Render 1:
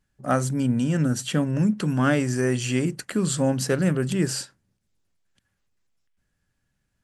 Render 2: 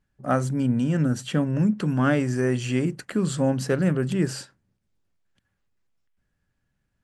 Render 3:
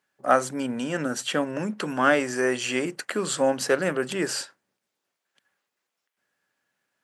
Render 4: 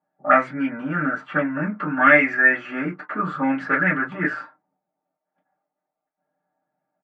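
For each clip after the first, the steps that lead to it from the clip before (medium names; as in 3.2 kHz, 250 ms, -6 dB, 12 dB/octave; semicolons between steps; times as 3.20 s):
treble shelf 3.9 kHz -9 dB
high-pass 490 Hz 12 dB/octave; trim +6 dB
comb 6.6 ms, depth 62%; reverberation, pre-delay 3 ms, DRR -3.5 dB; touch-sensitive low-pass 740–2100 Hz up, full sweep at -13 dBFS; trim -6 dB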